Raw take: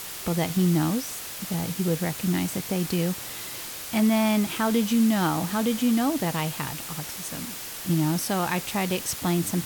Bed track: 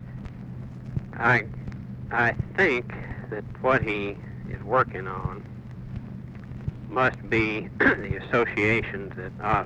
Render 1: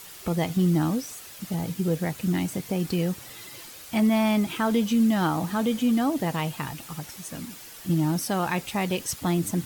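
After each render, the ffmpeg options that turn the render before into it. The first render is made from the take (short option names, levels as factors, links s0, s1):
-af "afftdn=nr=9:nf=-37"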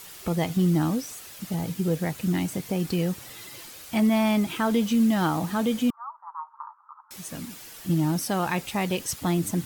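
-filter_complex "[0:a]asettb=1/sr,asplit=3[s0][s1][s2];[s0]atrim=end=4.814[s3];[s1]atrim=start=4.81:end=5.39,asetpts=PTS-STARTPTS,afade=t=in:d=0.004:c=qsin,afade=t=out:st=0.576:d=0.004:c=qsin,acrusher=bits=6:mix=0:aa=0.5[s4];[s2]atrim=start=5.386[s5];[s3][s4]acrossfade=d=0.004:c1=hsin:c2=qsin[s6];[s6][s5]acrossfade=d=0.004:c1=qsin:c2=hsin,asettb=1/sr,asplit=3[s7][s8][s9];[s7]atrim=end=5.904[s10];[s8]atrim=start=5.9:end=7.11,asetpts=PTS-STARTPTS,afade=t=in:d=0.004:c=qsin,afade=t=out:st=1.206:d=0.004:c=qsin,asuperpass=centerf=1100:order=8:qfactor=2.5[s11];[s9]atrim=start=7.106[s12];[s10][s11]acrossfade=d=0.004:c1=hsin:c2=qsin[s13];[s13][s12]acrossfade=d=0.004:c1=qsin:c2=hsin"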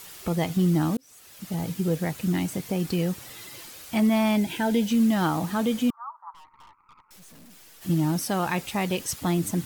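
-filter_complex "[0:a]asettb=1/sr,asplit=3[s0][s1][s2];[s0]atrim=end=4.364[s3];[s1]atrim=start=4.36:end=4.9,asetpts=PTS-STARTPTS,afade=t=in:d=0.004:c=qsin,afade=t=out:st=0.536:d=0.004:c=qsin,asuperstop=centerf=1200:order=8:qfactor=3.2[s4];[s2]atrim=start=4.896[s5];[s3][s4]acrossfade=d=0.004:c1=hsin:c2=qsin[s6];[s6][s5]acrossfade=d=0.004:c1=qsin:c2=hsin,asplit=3[s7][s8][s9];[s7]afade=t=out:st=6.33:d=0.02[s10];[s8]aeval=exprs='(tanh(282*val(0)+0.7)-tanh(0.7))/282':c=same,afade=t=in:st=6.33:d=0.02,afade=t=out:st=7.81:d=0.02[s11];[s9]afade=t=in:st=7.81:d=0.02[s12];[s10][s11][s12]amix=inputs=3:normalize=0,asplit=2[s13][s14];[s13]atrim=end=0.97,asetpts=PTS-STARTPTS,afade=t=out:st=0.966:d=0.004:c=hsin[s15];[s14]atrim=start=0.97,asetpts=PTS-STARTPTS,afade=t=in:d=0.64[s16];[s15][s16]concat=n=2:v=0:a=1"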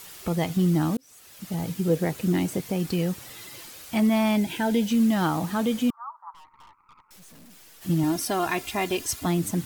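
-filter_complex "[0:a]asettb=1/sr,asplit=3[s0][s1][s2];[s0]atrim=end=1.894[s3];[s1]atrim=start=1.89:end=2.6,asetpts=PTS-STARTPTS,afade=t=in:d=0.004:c=qsin,afade=t=out:st=0.706:d=0.004:c=qsin,equalizer=f=410:w=1.5:g=7[s4];[s2]atrim=start=2.596[s5];[s3][s4]acrossfade=d=0.004:c1=hsin:c2=qsin[s6];[s6][s5]acrossfade=d=0.004:c1=qsin:c2=hsin,asettb=1/sr,asplit=3[s7][s8][s9];[s7]atrim=end=8.034[s10];[s8]atrim=start=8.03:end=9.26,asetpts=PTS-STARTPTS,afade=t=in:d=0.004:c=qsin,afade=t=out:st=1.226:d=0.004:c=qsin,aecho=1:1:2.9:0.65,atrim=end_sample=54243[s11];[s9]atrim=start=9.256[s12];[s10][s11]acrossfade=d=0.004:c1=hsin:c2=qsin[s13];[s13][s12]acrossfade=d=0.004:c1=qsin:c2=hsin"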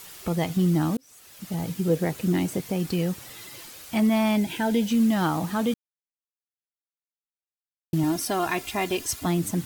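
-filter_complex "[0:a]asplit=3[s0][s1][s2];[s0]atrim=end=5.74,asetpts=PTS-STARTPTS,afade=t=out:st=5.736:d=0.004:c=hsin[s3];[s1]atrim=start=5.74:end=7.93,asetpts=PTS-STARTPTS,volume=0[s4];[s2]atrim=start=7.93,asetpts=PTS-STARTPTS,afade=t=in:d=0.004:c=hsin[s5];[s3][s4][s5]concat=n=3:v=0:a=1"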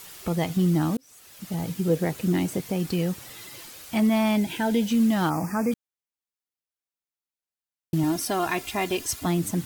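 -filter_complex "[0:a]asplit=3[s0][s1][s2];[s0]afade=t=out:st=5.29:d=0.02[s3];[s1]asuperstop=centerf=3500:order=20:qfactor=1.8,afade=t=in:st=5.29:d=0.02,afade=t=out:st=5.71:d=0.02[s4];[s2]afade=t=in:st=5.71:d=0.02[s5];[s3][s4][s5]amix=inputs=3:normalize=0"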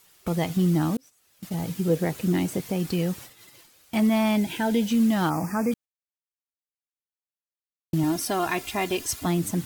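-af "agate=range=0.2:threshold=0.01:ratio=16:detection=peak"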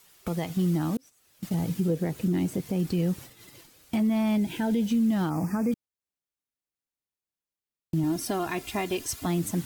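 -filter_complex "[0:a]acrossover=split=440|7400[s0][s1][s2];[s0]dynaudnorm=f=330:g=9:m=2.24[s3];[s3][s1][s2]amix=inputs=3:normalize=0,alimiter=limit=0.119:level=0:latency=1:release=411"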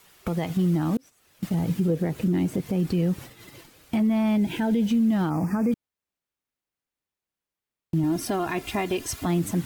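-filter_complex "[0:a]acrossover=split=3300[s0][s1];[s0]acontrast=55[s2];[s2][s1]amix=inputs=2:normalize=0,alimiter=limit=0.15:level=0:latency=1:release=119"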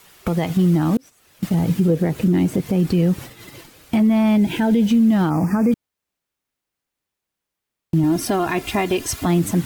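-af "volume=2.11"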